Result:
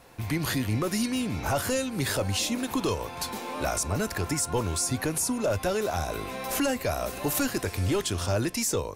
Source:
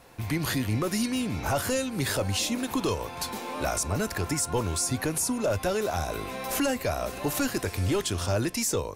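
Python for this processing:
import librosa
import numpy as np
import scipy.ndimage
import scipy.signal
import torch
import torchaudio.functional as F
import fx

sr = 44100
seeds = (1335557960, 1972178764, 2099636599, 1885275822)

y = fx.high_shelf(x, sr, hz=8600.0, db=6.0, at=(6.89, 7.43))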